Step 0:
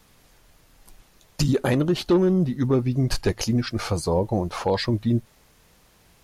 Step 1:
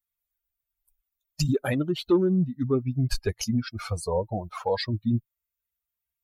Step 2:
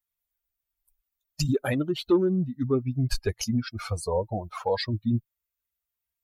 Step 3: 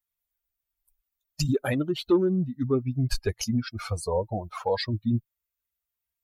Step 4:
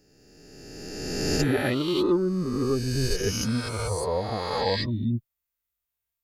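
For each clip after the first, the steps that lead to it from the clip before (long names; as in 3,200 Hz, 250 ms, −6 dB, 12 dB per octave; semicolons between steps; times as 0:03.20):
spectral dynamics exaggerated over time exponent 2
dynamic equaliser 170 Hz, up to −4 dB, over −42 dBFS, Q 3.8
no processing that can be heard
peak hold with a rise ahead of every peak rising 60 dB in 2.04 s; level −3 dB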